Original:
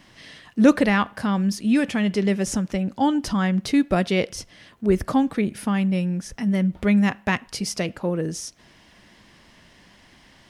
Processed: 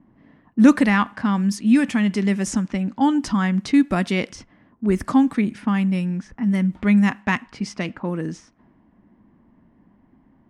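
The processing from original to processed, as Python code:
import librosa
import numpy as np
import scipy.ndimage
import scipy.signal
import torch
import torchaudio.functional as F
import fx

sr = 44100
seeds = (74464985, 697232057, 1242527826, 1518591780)

y = fx.env_lowpass(x, sr, base_hz=510.0, full_db=-19.0)
y = fx.graphic_eq(y, sr, hz=(250, 500, 1000, 2000, 8000), db=(10, -5, 7, 5, 8))
y = y * 10.0 ** (-4.5 / 20.0)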